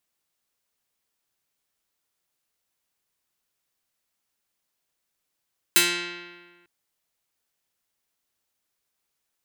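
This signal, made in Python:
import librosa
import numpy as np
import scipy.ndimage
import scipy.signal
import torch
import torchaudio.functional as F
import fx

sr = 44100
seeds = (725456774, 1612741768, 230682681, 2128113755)

y = fx.pluck(sr, length_s=0.9, note=53, decay_s=1.53, pick=0.29, brightness='medium')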